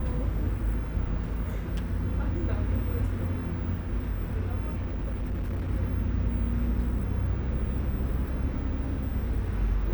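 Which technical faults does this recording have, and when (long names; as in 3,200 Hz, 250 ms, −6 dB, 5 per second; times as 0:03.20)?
0:04.69–0:05.71: clipping −27 dBFS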